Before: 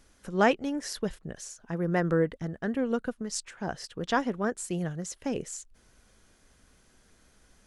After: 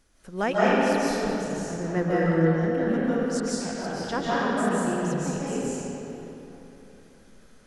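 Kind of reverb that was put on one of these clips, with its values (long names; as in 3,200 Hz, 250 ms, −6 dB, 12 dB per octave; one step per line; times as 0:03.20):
comb and all-pass reverb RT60 3.4 s, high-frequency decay 0.65×, pre-delay 110 ms, DRR −9 dB
level −4.5 dB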